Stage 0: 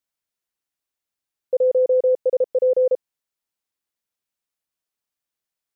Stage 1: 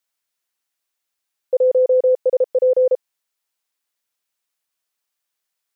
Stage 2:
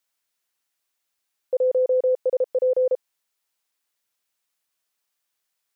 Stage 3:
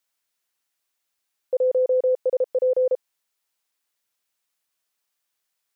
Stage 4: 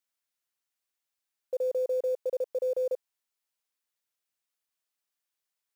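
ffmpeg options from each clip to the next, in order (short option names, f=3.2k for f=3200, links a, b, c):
-af "lowshelf=f=410:g=-11.5,volume=7dB"
-af "alimiter=limit=-17dB:level=0:latency=1:release=35,volume=1dB"
-af anull
-af "acrusher=bits=8:mode=log:mix=0:aa=0.000001,volume=-8.5dB"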